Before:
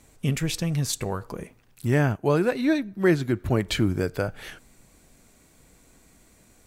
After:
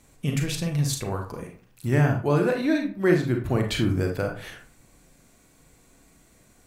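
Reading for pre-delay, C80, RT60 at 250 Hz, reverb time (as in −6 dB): 34 ms, 13.0 dB, 0.45 s, 0.40 s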